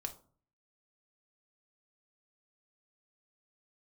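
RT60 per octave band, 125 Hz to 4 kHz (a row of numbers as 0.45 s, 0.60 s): 0.65 s, 0.60 s, 0.50 s, 0.45 s, 0.25 s, 0.25 s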